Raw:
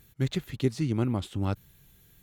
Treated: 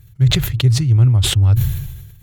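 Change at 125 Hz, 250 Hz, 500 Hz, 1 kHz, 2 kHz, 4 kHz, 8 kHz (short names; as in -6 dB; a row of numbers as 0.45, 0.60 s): +18.5 dB, +5.0 dB, +1.0 dB, n/a, +13.5 dB, +21.0 dB, +22.0 dB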